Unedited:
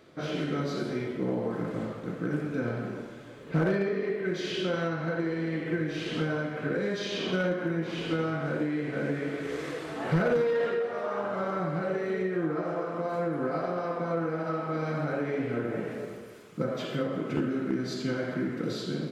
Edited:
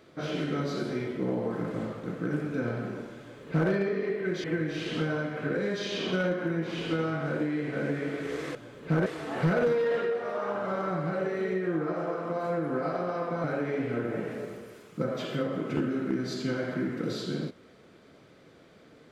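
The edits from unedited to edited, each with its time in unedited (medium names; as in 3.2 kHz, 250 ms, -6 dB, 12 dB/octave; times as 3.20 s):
3.19–3.70 s: copy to 9.75 s
4.44–5.64 s: delete
14.13–15.04 s: delete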